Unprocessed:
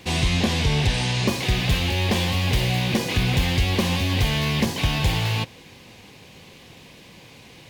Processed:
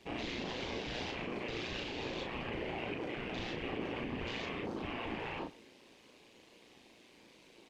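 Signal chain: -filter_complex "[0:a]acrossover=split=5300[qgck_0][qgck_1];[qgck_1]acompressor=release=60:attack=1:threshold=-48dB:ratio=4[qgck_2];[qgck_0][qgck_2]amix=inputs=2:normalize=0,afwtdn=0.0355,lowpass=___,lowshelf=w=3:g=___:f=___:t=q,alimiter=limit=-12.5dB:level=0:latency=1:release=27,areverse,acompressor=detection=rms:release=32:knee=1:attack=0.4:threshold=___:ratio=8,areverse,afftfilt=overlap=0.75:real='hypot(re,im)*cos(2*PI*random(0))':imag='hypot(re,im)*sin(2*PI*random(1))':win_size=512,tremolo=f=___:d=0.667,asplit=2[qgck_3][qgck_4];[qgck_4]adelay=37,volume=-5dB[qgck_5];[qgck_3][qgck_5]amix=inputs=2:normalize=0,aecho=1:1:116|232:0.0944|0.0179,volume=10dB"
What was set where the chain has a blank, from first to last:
11000, -10.5, 220, -38dB, 120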